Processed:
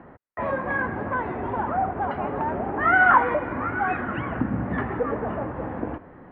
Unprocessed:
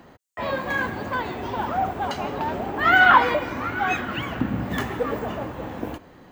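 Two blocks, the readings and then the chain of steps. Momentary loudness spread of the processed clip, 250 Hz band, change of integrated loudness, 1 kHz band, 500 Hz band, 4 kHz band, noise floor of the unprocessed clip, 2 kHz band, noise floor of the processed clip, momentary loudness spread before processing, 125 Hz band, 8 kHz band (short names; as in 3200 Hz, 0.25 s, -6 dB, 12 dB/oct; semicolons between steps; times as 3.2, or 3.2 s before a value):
14 LU, +0.5 dB, -1.5 dB, -1.0 dB, 0.0 dB, under -15 dB, -49 dBFS, -2.5 dB, -47 dBFS, 17 LU, +0.5 dB, n/a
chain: LPF 1900 Hz 24 dB/oct; in parallel at -1 dB: compressor, threshold -29 dBFS, peak gain reduction 18 dB; on the sum: gain -3 dB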